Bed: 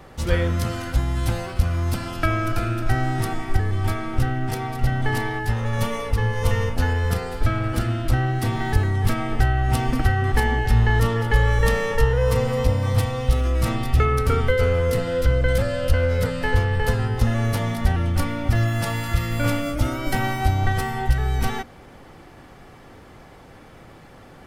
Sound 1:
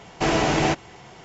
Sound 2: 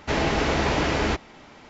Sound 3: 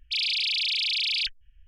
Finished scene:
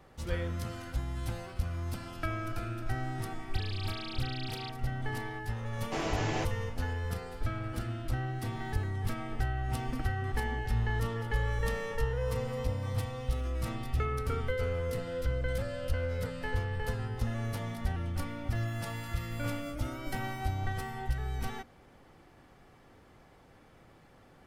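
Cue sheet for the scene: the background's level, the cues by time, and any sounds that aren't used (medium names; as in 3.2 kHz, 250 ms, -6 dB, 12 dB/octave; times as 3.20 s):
bed -13 dB
3.43 s: add 3 -3 dB + compression, threshold -42 dBFS
5.71 s: add 1 -13 dB
not used: 2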